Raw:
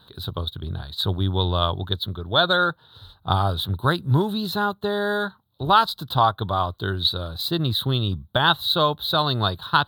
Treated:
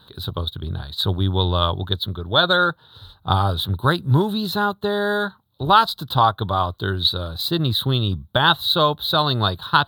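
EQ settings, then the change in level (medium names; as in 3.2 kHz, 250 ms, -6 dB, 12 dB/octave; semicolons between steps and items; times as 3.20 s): band-stop 690 Hz, Q 22; +2.5 dB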